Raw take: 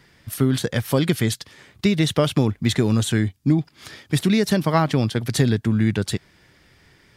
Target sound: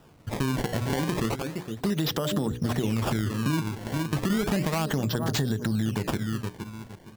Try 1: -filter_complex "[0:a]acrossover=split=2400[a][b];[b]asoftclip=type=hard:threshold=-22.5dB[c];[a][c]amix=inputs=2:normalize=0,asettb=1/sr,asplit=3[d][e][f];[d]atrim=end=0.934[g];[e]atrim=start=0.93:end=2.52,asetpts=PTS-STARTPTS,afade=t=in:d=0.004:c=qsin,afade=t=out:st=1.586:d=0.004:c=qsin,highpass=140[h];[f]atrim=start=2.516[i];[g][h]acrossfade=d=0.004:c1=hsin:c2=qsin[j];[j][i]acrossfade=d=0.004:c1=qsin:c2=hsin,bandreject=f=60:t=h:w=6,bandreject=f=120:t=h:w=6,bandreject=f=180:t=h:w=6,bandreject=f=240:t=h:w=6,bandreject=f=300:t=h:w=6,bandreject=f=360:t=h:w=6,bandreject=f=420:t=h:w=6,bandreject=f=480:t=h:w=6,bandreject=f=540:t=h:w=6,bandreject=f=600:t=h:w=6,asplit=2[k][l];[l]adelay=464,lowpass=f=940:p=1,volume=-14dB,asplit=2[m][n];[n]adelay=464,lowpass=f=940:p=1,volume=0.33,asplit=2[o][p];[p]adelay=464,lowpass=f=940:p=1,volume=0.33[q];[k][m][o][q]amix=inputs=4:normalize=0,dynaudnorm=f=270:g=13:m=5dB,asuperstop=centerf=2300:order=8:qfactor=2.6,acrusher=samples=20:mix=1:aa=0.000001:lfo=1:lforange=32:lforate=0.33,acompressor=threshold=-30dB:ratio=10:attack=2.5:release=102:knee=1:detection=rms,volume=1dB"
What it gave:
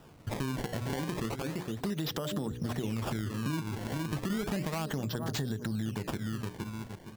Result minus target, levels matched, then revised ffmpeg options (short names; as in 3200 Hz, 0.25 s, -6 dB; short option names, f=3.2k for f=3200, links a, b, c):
compressor: peak gain reduction +7 dB
-filter_complex "[0:a]acrossover=split=2400[a][b];[b]asoftclip=type=hard:threshold=-22.5dB[c];[a][c]amix=inputs=2:normalize=0,asettb=1/sr,asplit=3[d][e][f];[d]atrim=end=0.934[g];[e]atrim=start=0.93:end=2.52,asetpts=PTS-STARTPTS,afade=t=in:d=0.004:c=qsin,afade=t=out:st=1.586:d=0.004:c=qsin,highpass=140[h];[f]atrim=start=2.516[i];[g][h]acrossfade=d=0.004:c1=hsin:c2=qsin[j];[j][i]acrossfade=d=0.004:c1=qsin:c2=hsin,bandreject=f=60:t=h:w=6,bandreject=f=120:t=h:w=6,bandreject=f=180:t=h:w=6,bandreject=f=240:t=h:w=6,bandreject=f=300:t=h:w=6,bandreject=f=360:t=h:w=6,bandreject=f=420:t=h:w=6,bandreject=f=480:t=h:w=6,bandreject=f=540:t=h:w=6,bandreject=f=600:t=h:w=6,asplit=2[k][l];[l]adelay=464,lowpass=f=940:p=1,volume=-14dB,asplit=2[m][n];[n]adelay=464,lowpass=f=940:p=1,volume=0.33,asplit=2[o][p];[p]adelay=464,lowpass=f=940:p=1,volume=0.33[q];[k][m][o][q]amix=inputs=4:normalize=0,dynaudnorm=f=270:g=13:m=5dB,asuperstop=centerf=2300:order=8:qfactor=2.6,acrusher=samples=20:mix=1:aa=0.000001:lfo=1:lforange=32:lforate=0.33,acompressor=threshold=-22dB:ratio=10:attack=2.5:release=102:knee=1:detection=rms,volume=1dB"